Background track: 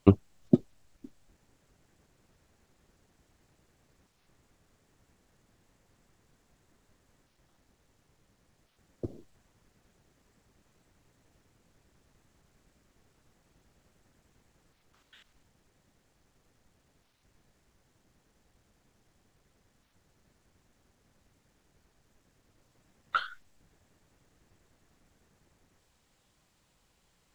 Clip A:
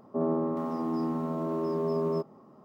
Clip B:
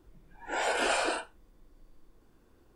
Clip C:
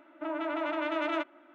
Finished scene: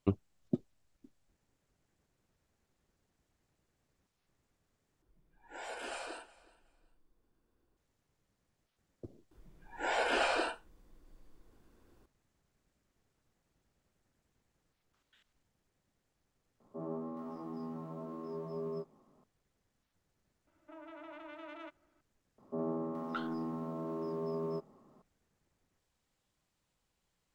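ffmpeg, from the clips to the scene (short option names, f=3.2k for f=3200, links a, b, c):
-filter_complex "[2:a]asplit=2[a][b];[1:a]asplit=2[c][d];[0:a]volume=-11.5dB[e];[a]aecho=1:1:368|736:0.0891|0.0205[f];[b]acrossover=split=5600[g][h];[h]acompressor=threshold=-53dB:ratio=4:attack=1:release=60[i];[g][i]amix=inputs=2:normalize=0[j];[c]flanger=delay=17:depth=3.7:speed=0.95[k];[e]asplit=2[l][m];[l]atrim=end=5.024[n];[f]atrim=end=2.75,asetpts=PTS-STARTPTS,volume=-14.5dB[o];[m]atrim=start=7.766[p];[j]atrim=end=2.75,asetpts=PTS-STARTPTS,volume=-2.5dB,afade=t=in:d=0.004:c=hsin,afade=t=out:st=2.746:d=0.004:c=hsin,adelay=9310[q];[k]atrim=end=2.64,asetpts=PTS-STARTPTS,volume=-9.5dB,afade=t=in:d=0.004:c=hsin,afade=t=out:st=2.636:d=0.004:c=hsin,adelay=16600[r];[3:a]atrim=end=1.54,asetpts=PTS-STARTPTS,volume=-17.5dB,afade=t=in:d=0.004:c=hsin,afade=t=out:st=1.536:d=0.004:c=hsin,adelay=20470[s];[d]atrim=end=2.64,asetpts=PTS-STARTPTS,volume=-8.5dB,afade=t=in:d=0.004:c=hsin,afade=t=out:st=2.636:d=0.004:c=hsin,adelay=22380[t];[n][o]acrossfade=d=0.004:c1=hsin:c2=hsin[u];[u][p]acrossfade=d=0.004:c1=hsin:c2=hsin[v];[v][q][r][s][t]amix=inputs=5:normalize=0"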